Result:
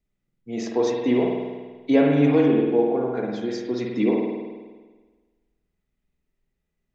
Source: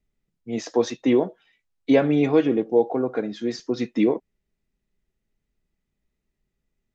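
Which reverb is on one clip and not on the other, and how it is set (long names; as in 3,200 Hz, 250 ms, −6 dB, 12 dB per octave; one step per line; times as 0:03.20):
spring reverb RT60 1.4 s, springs 48 ms, chirp 65 ms, DRR −1 dB
level −3 dB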